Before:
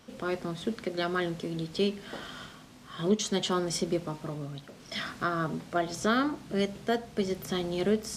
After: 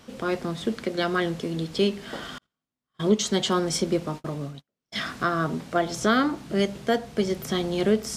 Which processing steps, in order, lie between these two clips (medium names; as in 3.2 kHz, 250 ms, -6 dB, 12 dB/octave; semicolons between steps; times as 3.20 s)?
2.38–4.98 s: gate -38 dBFS, range -43 dB; trim +5 dB